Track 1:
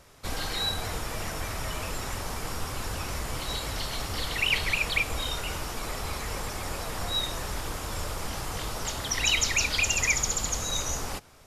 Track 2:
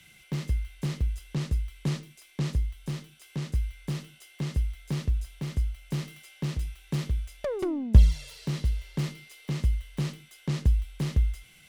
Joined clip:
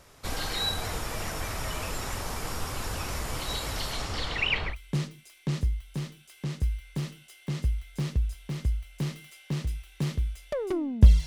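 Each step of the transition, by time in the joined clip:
track 1
3.92–4.76 s: low-pass 11 kHz -> 1.8 kHz
4.71 s: go over to track 2 from 1.63 s, crossfade 0.10 s

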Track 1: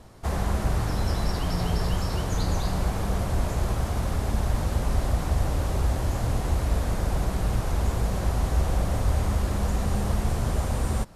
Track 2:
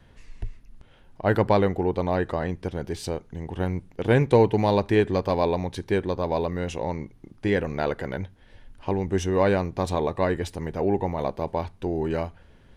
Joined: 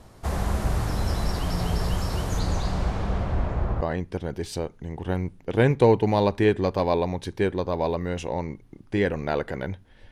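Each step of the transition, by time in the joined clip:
track 1
2.39–3.81 s: low-pass 10 kHz -> 1.4 kHz
3.81 s: go over to track 2 from 2.32 s

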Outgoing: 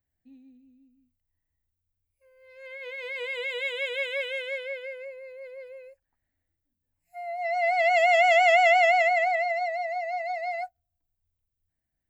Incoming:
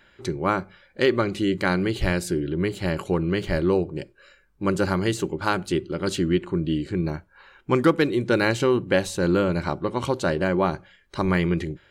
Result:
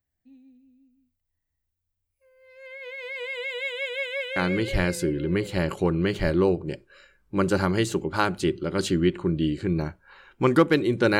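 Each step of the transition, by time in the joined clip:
outgoing
5.05 s: go over to incoming from 2.33 s, crossfade 1.38 s logarithmic

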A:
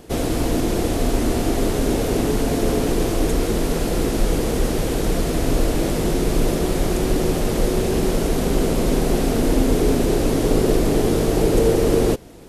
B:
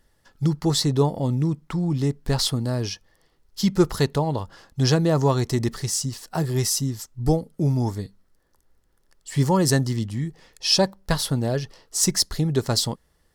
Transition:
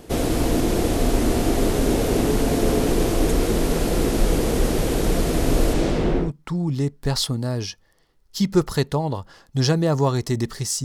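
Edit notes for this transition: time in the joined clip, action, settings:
A
5.73–6.32 s: low-pass 9.6 kHz -> 1.3 kHz
6.25 s: go over to B from 1.48 s, crossfade 0.14 s

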